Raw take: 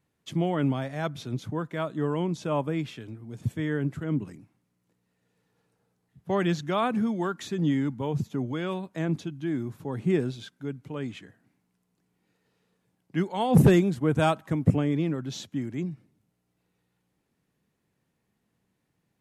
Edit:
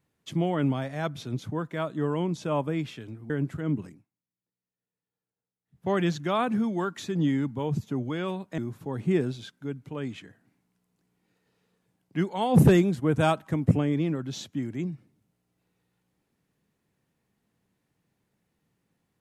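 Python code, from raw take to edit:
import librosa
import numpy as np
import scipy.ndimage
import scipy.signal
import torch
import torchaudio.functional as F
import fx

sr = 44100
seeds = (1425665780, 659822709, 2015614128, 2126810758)

y = fx.edit(x, sr, fx.cut(start_s=3.3, length_s=0.43),
    fx.fade_down_up(start_s=4.27, length_s=2.04, db=-21.5, fade_s=0.24),
    fx.cut(start_s=9.01, length_s=0.56), tone=tone)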